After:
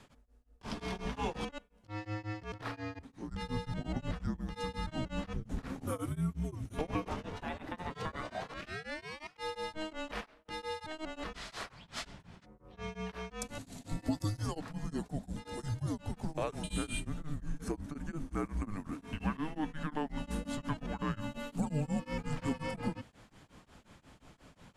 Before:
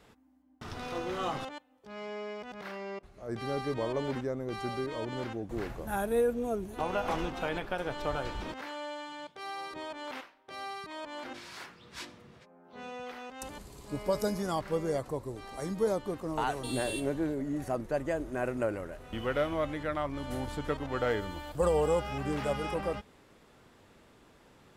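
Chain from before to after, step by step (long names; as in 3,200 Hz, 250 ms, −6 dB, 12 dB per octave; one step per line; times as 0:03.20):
Chebyshev low-pass filter 9,900 Hz, order 2
notch filter 390 Hz, Q 12
downward compressor 3 to 1, threshold −36 dBFS, peak gain reduction 9 dB
0:07.08–0:09.36: ring modulation 400 Hz → 2,000 Hz
frequency shifter −310 Hz
tremolo along a rectified sine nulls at 5.6 Hz
level +5 dB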